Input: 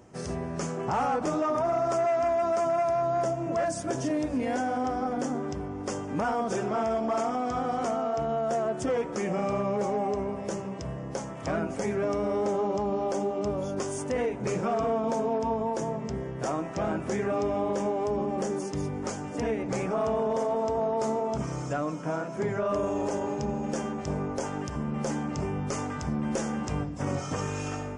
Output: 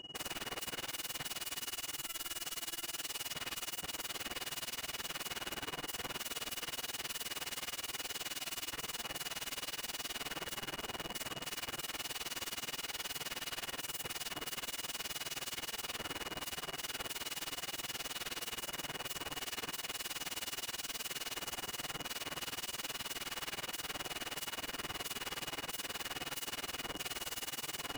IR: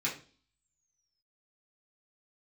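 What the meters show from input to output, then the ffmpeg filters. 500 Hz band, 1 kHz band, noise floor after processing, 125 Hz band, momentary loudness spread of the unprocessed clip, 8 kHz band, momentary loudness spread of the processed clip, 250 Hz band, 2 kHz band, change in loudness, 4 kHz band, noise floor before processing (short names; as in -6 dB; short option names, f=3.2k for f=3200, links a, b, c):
-23.5 dB, -16.5 dB, -53 dBFS, -21.0 dB, 6 LU, +1.5 dB, 1 LU, -22.0 dB, -2.0 dB, -10.5 dB, +9.5 dB, -36 dBFS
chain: -filter_complex "[0:a]aeval=exprs='(mod(53.1*val(0)+1,2)-1)/53.1':c=same,aeval=exprs='val(0)+0.00631*sin(2*PI*2900*n/s)':c=same,asplit=2[a][b];[1:a]atrim=start_sample=2205[c];[b][c]afir=irnorm=-1:irlink=0,volume=-14dB[d];[a][d]amix=inputs=2:normalize=0,tremolo=f=19:d=0.96,volume=-1dB"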